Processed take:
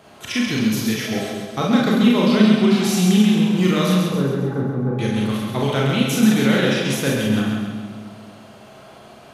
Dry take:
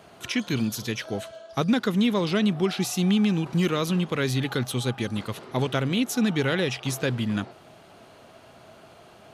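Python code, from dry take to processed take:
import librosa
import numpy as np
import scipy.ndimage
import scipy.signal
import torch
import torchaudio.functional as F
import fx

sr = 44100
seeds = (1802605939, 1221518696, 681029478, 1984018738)

y = fx.gaussian_blur(x, sr, sigma=7.3, at=(3.96, 4.99))
y = fx.echo_split(y, sr, split_hz=360.0, low_ms=218, high_ms=134, feedback_pct=52, wet_db=-4.0)
y = fx.rev_schroeder(y, sr, rt60_s=0.4, comb_ms=29, drr_db=-1.5)
y = F.gain(torch.from_numpy(y), 1.0).numpy()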